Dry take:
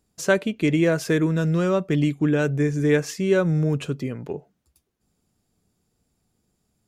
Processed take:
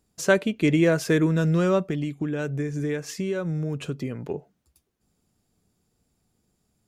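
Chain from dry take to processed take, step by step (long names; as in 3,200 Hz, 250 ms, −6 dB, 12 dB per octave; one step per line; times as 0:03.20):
0:01.81–0:04.22: downward compressor, threshold −25 dBFS, peak gain reduction 10.5 dB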